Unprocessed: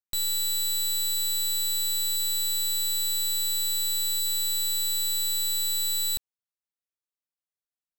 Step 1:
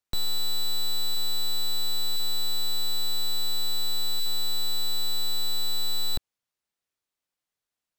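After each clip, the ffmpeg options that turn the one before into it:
-filter_complex "[0:a]highshelf=f=9800:g=-8,acrossover=split=280|1600[s0][s1][s2];[s2]asoftclip=type=tanh:threshold=0.0112[s3];[s0][s1][s3]amix=inputs=3:normalize=0,volume=2.66"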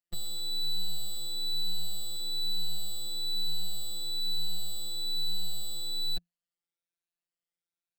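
-af "afftfilt=real='re*pow(10,8/40*sin(2*PI*(1.5*log(max(b,1)*sr/1024/100)/log(2)-(1.1)*(pts-256)/sr)))':imag='im*pow(10,8/40*sin(2*PI*(1.5*log(max(b,1)*sr/1024/100)/log(2)-(1.1)*(pts-256)/sr)))':win_size=1024:overlap=0.75,equalizer=f=100:t=o:w=0.33:g=11,equalizer=f=1000:t=o:w=0.33:g=-12,equalizer=f=6300:t=o:w=0.33:g=-4,equalizer=f=12500:t=o:w=0.33:g=-7,afftfilt=real='hypot(re,im)*cos(PI*b)':imag='0':win_size=1024:overlap=0.75,volume=0.531"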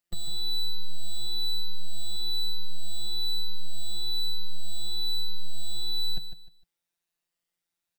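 -filter_complex "[0:a]asoftclip=type=tanh:threshold=0.0447,asplit=2[s0][s1];[s1]aecho=0:1:152|304|456:0.335|0.0871|0.0226[s2];[s0][s2]amix=inputs=2:normalize=0,volume=2.37"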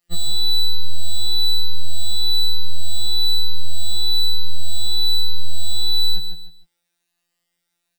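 -filter_complex "[0:a]asplit=2[s0][s1];[s1]acompressor=threshold=0.0398:ratio=6,volume=1.26[s2];[s0][s2]amix=inputs=2:normalize=0,afftfilt=real='re*2.83*eq(mod(b,8),0)':imag='im*2.83*eq(mod(b,8),0)':win_size=2048:overlap=0.75"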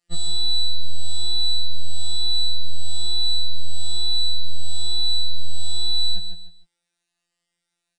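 -af "aresample=22050,aresample=44100,volume=0.75"

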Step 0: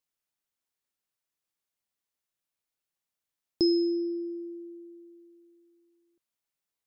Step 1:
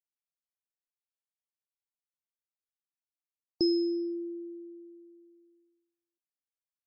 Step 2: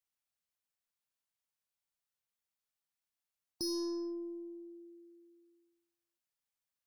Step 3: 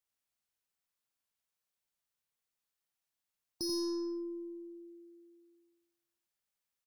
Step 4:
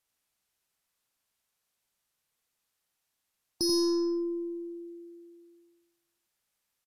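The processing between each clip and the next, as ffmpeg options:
-af "afftdn=nr=20:nf=-45,volume=0.75"
-af "equalizer=f=370:t=o:w=0.79:g=-8.5,aeval=exprs='(tanh(70.8*val(0)+0.1)-tanh(0.1))/70.8':c=same,volume=1.5"
-af "aecho=1:1:87:0.668"
-af "aresample=32000,aresample=44100,volume=2.66"

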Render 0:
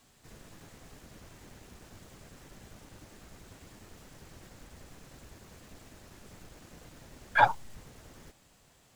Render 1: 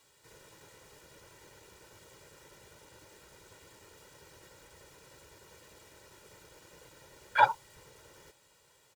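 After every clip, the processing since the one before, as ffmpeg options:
-af "highpass=f=260:p=1,aecho=1:1:2.1:0.72,volume=0.75"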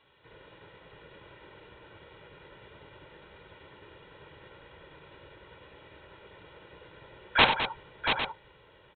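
-af "aresample=8000,aeval=exprs='(mod(6.68*val(0)+1,2)-1)/6.68':c=same,aresample=44100,aecho=1:1:53|93|209|684|803:0.251|0.282|0.299|0.447|0.251,volume=1.58"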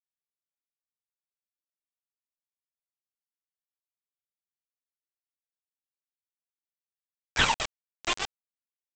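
-af "aphaser=in_gain=1:out_gain=1:delay=2.9:decay=0.72:speed=0.56:type=sinusoidal,aresample=16000,acrusher=bits=3:mix=0:aa=0.000001,aresample=44100,volume=0.562"

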